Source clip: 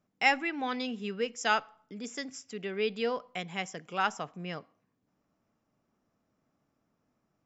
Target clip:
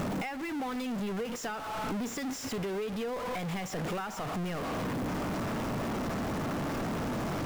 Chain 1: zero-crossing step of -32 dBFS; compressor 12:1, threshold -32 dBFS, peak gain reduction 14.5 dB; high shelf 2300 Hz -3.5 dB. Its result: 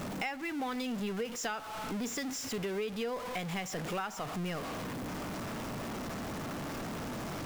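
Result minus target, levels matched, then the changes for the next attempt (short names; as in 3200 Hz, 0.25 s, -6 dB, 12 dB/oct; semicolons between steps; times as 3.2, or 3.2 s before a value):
zero-crossing step: distortion -7 dB; 4000 Hz band +3.0 dB
change: zero-crossing step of -21 dBFS; change: high shelf 2300 Hz -10 dB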